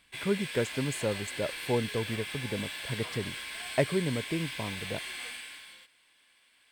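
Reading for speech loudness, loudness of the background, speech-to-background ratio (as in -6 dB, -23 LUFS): -33.5 LUFS, -37.5 LUFS, 4.0 dB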